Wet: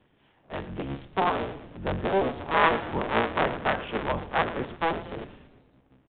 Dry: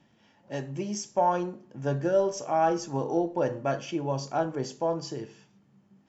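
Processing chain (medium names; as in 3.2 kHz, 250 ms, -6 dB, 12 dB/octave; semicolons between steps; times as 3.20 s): cycle switcher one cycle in 3, inverted; 2.54–4.89 s: dynamic bell 1.7 kHz, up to +7 dB, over -40 dBFS, Q 0.7; frequency-shifting echo 114 ms, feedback 59%, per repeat -150 Hz, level -14.5 dB; resampled via 8 kHz; trim -1 dB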